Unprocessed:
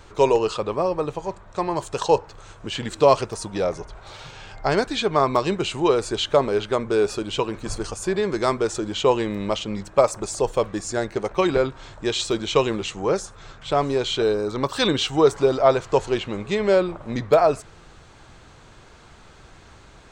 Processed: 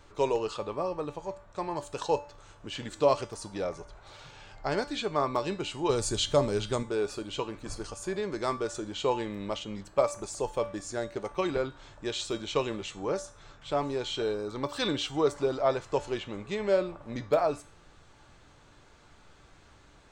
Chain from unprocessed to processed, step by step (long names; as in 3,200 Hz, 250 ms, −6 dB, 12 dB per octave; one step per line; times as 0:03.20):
0:05.89–0:06.83: bass and treble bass +11 dB, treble +13 dB
tuned comb filter 290 Hz, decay 0.4 s, harmonics all, mix 70%